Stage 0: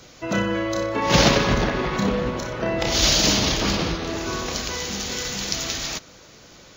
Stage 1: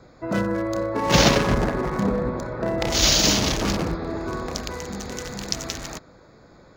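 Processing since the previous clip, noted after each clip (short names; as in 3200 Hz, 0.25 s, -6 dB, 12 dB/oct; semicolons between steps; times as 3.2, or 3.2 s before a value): Wiener smoothing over 15 samples; high shelf 7800 Hz +6.5 dB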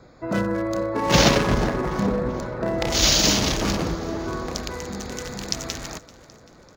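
feedback echo 0.388 s, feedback 50%, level -20 dB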